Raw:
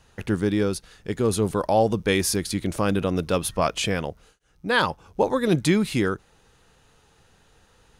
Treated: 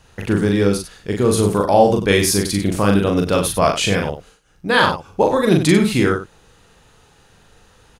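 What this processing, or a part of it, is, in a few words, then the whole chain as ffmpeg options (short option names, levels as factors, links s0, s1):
slapback doubling: -filter_complex "[0:a]asplit=3[s0][s1][s2];[s1]adelay=40,volume=0.708[s3];[s2]adelay=95,volume=0.316[s4];[s0][s3][s4]amix=inputs=3:normalize=0,volume=1.78"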